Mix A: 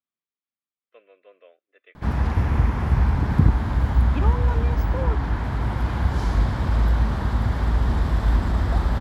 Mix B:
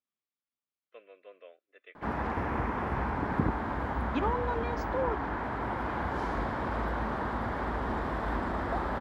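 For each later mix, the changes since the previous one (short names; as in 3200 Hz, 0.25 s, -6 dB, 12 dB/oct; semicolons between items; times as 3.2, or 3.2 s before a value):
background: add three-band isolator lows -18 dB, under 250 Hz, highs -14 dB, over 2300 Hz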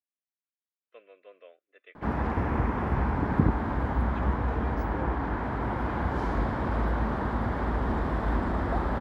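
second voice -10.5 dB; background: add low shelf 320 Hz +8 dB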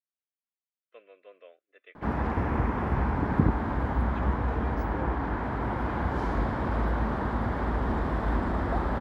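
none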